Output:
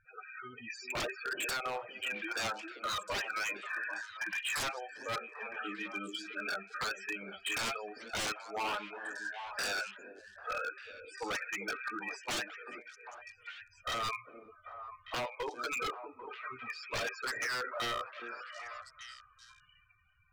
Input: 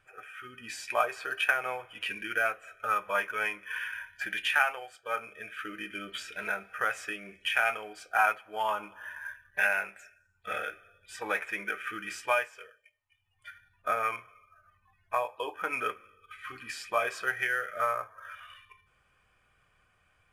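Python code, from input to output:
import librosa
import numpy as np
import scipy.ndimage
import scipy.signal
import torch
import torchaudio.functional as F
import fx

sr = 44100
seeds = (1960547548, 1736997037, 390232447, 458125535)

y = fx.cheby1_bandstop(x, sr, low_hz=370.0, high_hz=840.0, order=3, at=(3.28, 4.55))
y = fx.spec_topn(y, sr, count=16)
y = 10.0 ** (-30.0 / 20.0) * (np.abs((y / 10.0 ** (-30.0 / 20.0) + 3.0) % 4.0 - 2.0) - 1.0)
y = fx.echo_stepped(y, sr, ms=397, hz=340.0, octaves=1.4, feedback_pct=70, wet_db=-4)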